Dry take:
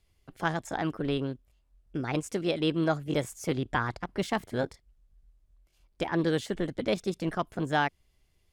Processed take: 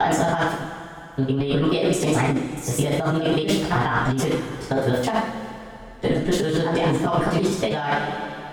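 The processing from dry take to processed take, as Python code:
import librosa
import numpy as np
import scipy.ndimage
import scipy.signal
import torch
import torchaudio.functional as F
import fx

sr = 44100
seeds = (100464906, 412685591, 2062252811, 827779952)

y = fx.block_reorder(x, sr, ms=107.0, group=8)
y = fx.rev_double_slope(y, sr, seeds[0], early_s=0.46, late_s=2.9, knee_db=-18, drr_db=-8.5)
y = fx.over_compress(y, sr, threshold_db=-23.0, ratio=-1.0)
y = F.gain(torch.from_numpy(y), 2.5).numpy()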